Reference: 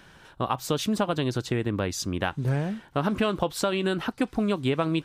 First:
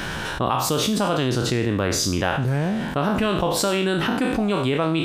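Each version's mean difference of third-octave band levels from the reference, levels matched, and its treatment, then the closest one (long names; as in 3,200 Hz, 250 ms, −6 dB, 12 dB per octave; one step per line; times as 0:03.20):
7.0 dB: peak hold with a decay on every bin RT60 0.52 s
envelope flattener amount 70%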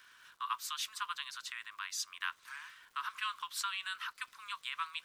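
17.0 dB: Butterworth high-pass 1,000 Hz 96 dB per octave
surface crackle 450 per second −50 dBFS
level −5.5 dB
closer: first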